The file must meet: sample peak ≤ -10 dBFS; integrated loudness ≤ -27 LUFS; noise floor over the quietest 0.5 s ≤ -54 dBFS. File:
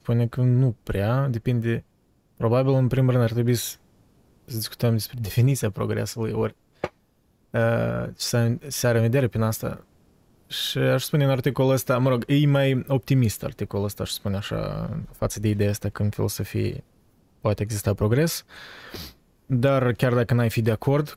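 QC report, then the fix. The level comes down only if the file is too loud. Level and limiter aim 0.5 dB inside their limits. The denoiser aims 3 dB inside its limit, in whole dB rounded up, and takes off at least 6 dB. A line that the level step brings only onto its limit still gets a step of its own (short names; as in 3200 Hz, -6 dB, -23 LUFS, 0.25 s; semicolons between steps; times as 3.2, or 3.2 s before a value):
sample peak -8.0 dBFS: fail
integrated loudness -24.0 LUFS: fail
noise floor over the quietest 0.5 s -64 dBFS: OK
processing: gain -3.5 dB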